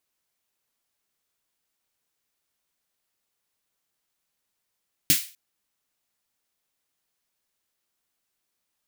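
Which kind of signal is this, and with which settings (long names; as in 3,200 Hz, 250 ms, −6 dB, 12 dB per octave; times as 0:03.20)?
synth snare length 0.25 s, tones 160 Hz, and 290 Hz, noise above 2,000 Hz, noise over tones 8.5 dB, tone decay 0.12 s, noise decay 0.35 s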